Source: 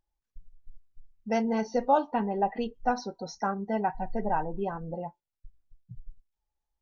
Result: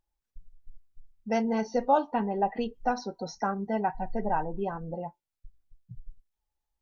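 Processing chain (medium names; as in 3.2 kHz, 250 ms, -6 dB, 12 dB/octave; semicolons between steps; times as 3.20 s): 2.58–3.67 s: three bands compressed up and down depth 40%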